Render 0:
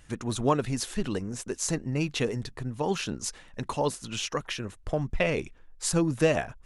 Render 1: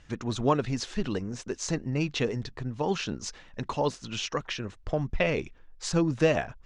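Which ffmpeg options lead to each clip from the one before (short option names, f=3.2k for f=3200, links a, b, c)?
-af "lowpass=f=6.3k:w=0.5412,lowpass=f=6.3k:w=1.3066"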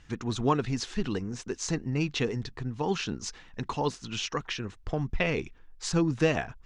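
-af "equalizer=f=580:w=5.1:g=-9"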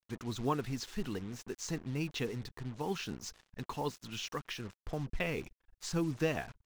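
-af "acrusher=bits=6:mix=0:aa=0.5,volume=-7.5dB"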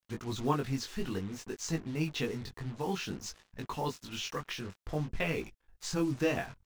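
-af "flanger=delay=18.5:depth=3.7:speed=0.56,volume=5.5dB"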